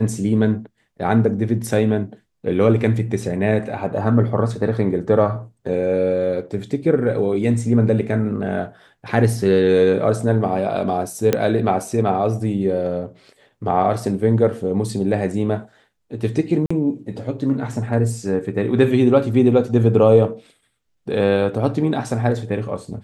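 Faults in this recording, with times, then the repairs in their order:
11.33 s: pop -4 dBFS
16.66–16.70 s: dropout 45 ms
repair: de-click; interpolate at 16.66 s, 45 ms

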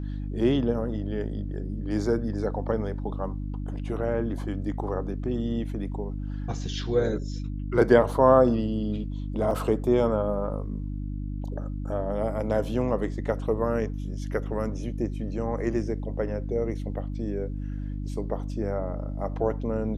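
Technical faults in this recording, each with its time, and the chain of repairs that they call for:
hum 50 Hz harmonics 6 -32 dBFS
9.51 s: dropout 2.2 ms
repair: de-hum 50 Hz, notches 6; interpolate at 9.51 s, 2.2 ms

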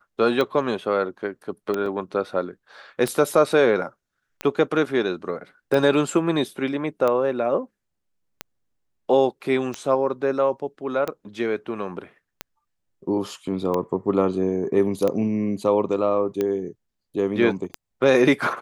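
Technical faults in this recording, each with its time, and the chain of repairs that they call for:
tick 45 rpm -12 dBFS
1.86 s: dropout 2.2 ms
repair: de-click; interpolate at 1.86 s, 2.2 ms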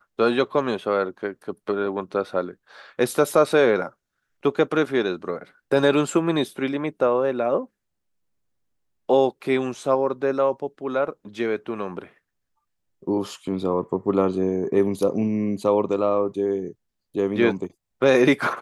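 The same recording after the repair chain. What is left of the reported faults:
nothing left

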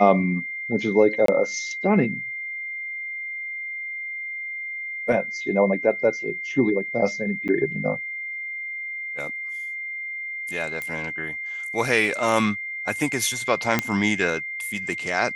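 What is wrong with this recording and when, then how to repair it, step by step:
whine 2.1 kHz -29 dBFS
1.26–1.28 s: dropout 23 ms
7.48–7.49 s: dropout 8.3 ms
10.82 s: pop -16 dBFS
13.79 s: pop -5 dBFS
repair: de-click; band-stop 2.1 kHz, Q 30; interpolate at 1.26 s, 23 ms; interpolate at 7.48 s, 8.3 ms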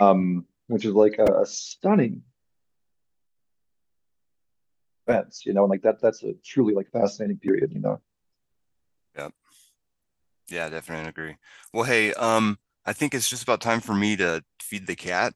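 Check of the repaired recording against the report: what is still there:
nothing left

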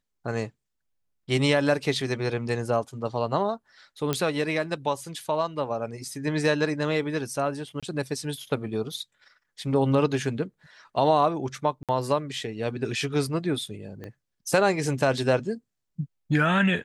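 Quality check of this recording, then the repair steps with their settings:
4.13 s: pop -10 dBFS
7.80–7.83 s: dropout 26 ms
11.83–11.89 s: dropout 57 ms
14.04 s: pop -25 dBFS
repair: de-click; interpolate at 7.80 s, 26 ms; interpolate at 11.83 s, 57 ms

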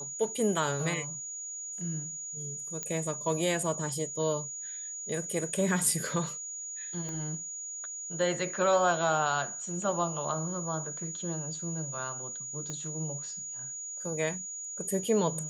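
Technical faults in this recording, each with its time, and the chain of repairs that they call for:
whine 6.8 kHz -37 dBFS
2.83 s: pop -19 dBFS
7.09 s: pop -26 dBFS
12.70 s: pop -24 dBFS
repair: de-click; band-stop 6.8 kHz, Q 30

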